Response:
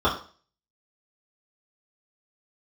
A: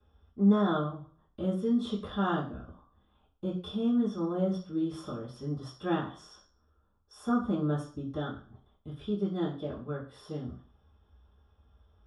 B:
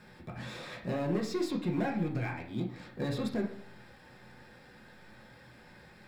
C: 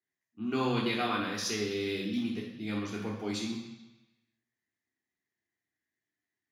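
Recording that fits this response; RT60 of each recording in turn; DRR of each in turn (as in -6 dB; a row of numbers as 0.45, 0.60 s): A; 0.40, 0.70, 1.0 s; -9.5, -0.5, -4.0 dB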